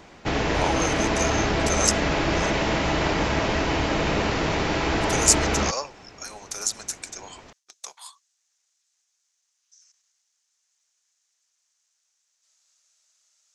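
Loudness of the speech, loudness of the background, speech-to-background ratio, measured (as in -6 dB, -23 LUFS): -27.0 LUFS, -23.5 LUFS, -3.5 dB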